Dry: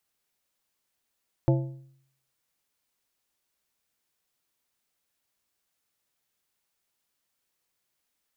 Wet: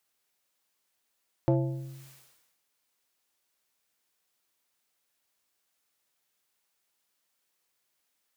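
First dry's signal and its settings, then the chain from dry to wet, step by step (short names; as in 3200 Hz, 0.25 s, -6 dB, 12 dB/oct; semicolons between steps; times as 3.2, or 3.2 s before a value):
metal hit plate, lowest mode 134 Hz, decay 0.67 s, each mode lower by 4.5 dB, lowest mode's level -17 dB
low shelf 190 Hz -9 dB; in parallel at -11 dB: one-sided clip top -24 dBFS; on the sum: sustainer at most 51 dB/s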